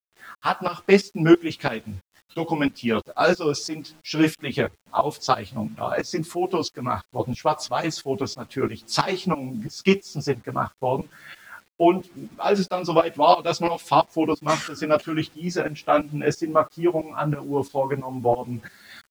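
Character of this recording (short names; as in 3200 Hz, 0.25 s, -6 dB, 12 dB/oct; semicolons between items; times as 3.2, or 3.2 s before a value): tremolo saw up 3 Hz, depth 90%; a quantiser's noise floor 10-bit, dither none; a shimmering, thickened sound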